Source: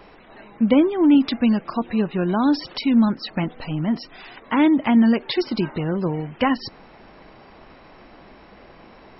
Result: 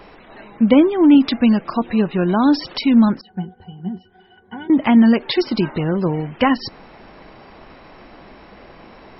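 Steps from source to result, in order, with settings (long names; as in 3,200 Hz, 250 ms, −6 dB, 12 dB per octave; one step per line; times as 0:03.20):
0:03.21–0:04.70: resonances in every octave F#, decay 0.11 s
level +4 dB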